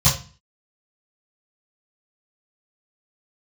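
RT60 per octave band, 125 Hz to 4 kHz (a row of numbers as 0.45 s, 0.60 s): 0.45 s, 0.55 s, 0.30 s, 0.35 s, 0.35 s, 0.35 s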